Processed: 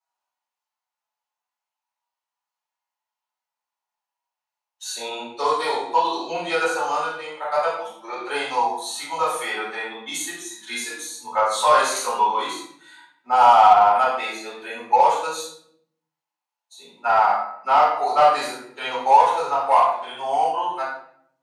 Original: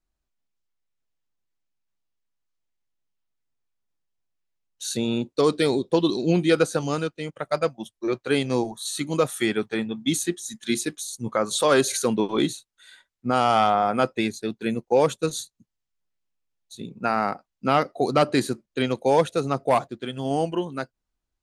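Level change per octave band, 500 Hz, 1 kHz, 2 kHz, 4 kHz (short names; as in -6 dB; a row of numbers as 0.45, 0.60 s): -1.5, +9.5, +3.5, +0.5 dB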